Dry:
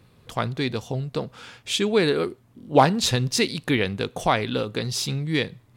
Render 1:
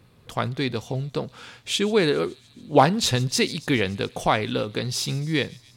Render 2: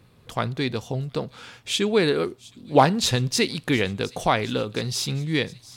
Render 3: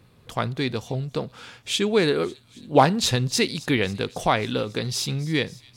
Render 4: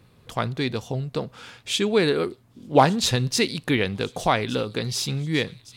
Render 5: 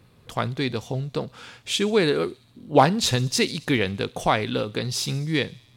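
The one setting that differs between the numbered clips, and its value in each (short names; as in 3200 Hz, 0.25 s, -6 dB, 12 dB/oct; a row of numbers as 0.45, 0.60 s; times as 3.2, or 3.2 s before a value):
thin delay, time: 141, 714, 273, 1165, 67 ms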